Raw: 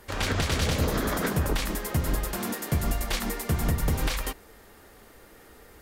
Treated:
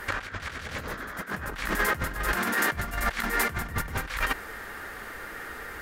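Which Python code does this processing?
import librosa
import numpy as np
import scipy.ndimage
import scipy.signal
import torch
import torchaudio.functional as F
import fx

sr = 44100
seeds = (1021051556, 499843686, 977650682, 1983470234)

y = fx.peak_eq(x, sr, hz=1600.0, db=14.5, octaves=1.3)
y = fx.over_compress(y, sr, threshold_db=-29.0, ratio=-0.5)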